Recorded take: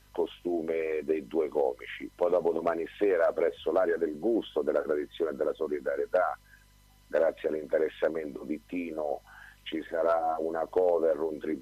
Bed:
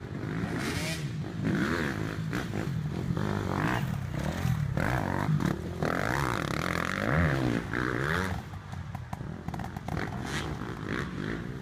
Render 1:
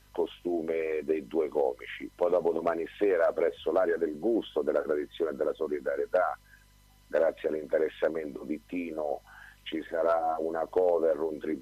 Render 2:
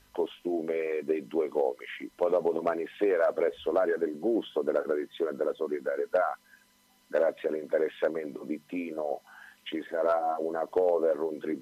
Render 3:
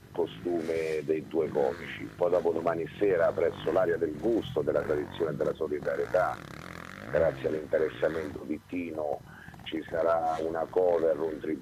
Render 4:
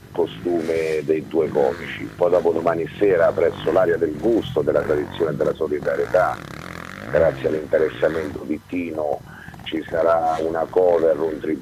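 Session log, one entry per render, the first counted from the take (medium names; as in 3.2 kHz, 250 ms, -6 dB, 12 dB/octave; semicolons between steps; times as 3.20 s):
no audible change
de-hum 50 Hz, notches 3
add bed -12.5 dB
trim +9 dB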